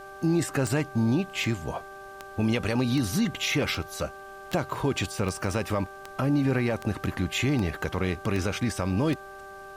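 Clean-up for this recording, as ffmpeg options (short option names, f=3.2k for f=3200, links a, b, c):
-af "adeclick=t=4,bandreject=f=390.8:t=h:w=4,bandreject=f=781.6:t=h:w=4,bandreject=f=1.1724k:t=h:w=4,bandreject=f=1.5632k:t=h:w=4,bandreject=f=600:w=30,agate=range=-21dB:threshold=-35dB"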